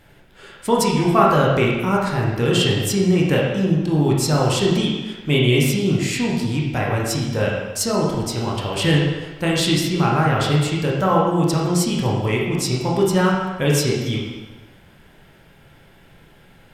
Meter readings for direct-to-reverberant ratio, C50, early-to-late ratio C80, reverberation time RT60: -3.5 dB, 1.0 dB, 3.0 dB, 1.2 s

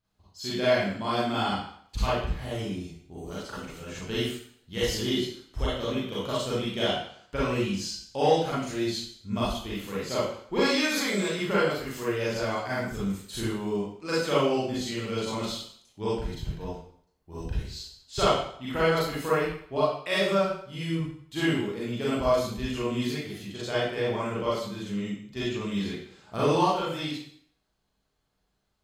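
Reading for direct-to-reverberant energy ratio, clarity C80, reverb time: -9.0 dB, 4.0 dB, 0.60 s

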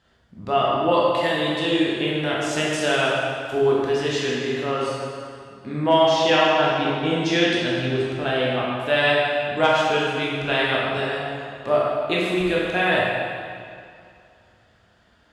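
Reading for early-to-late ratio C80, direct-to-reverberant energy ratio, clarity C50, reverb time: 0.0 dB, -5.5 dB, -2.0 dB, 2.3 s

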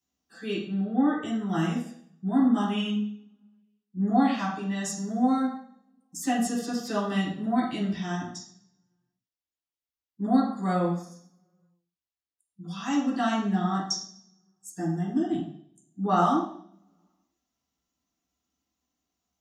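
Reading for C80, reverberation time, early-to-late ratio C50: 7.5 dB, 0.60 s, 3.5 dB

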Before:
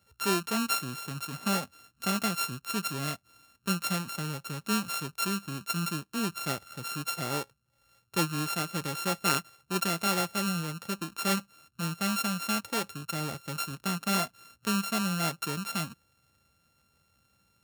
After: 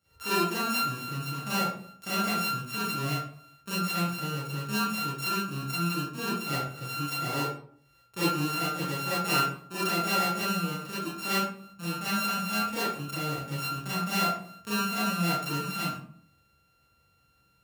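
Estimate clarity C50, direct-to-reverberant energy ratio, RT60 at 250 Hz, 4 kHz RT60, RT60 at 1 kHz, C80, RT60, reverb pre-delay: -0.5 dB, -11.0 dB, 0.70 s, 0.35 s, 0.55 s, 5.5 dB, 0.55 s, 29 ms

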